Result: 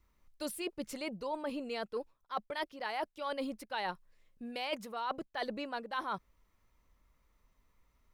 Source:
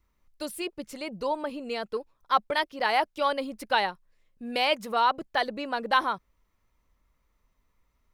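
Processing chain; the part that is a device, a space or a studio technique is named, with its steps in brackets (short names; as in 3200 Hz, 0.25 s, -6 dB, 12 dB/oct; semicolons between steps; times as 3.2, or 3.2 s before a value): compression on the reversed sound (reverse; compressor 10:1, threshold -34 dBFS, peak gain reduction 17 dB; reverse)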